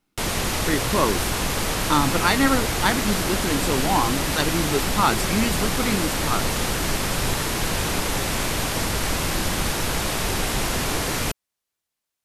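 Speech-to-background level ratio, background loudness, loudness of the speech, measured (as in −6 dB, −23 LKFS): −0.5 dB, −24.0 LKFS, −24.5 LKFS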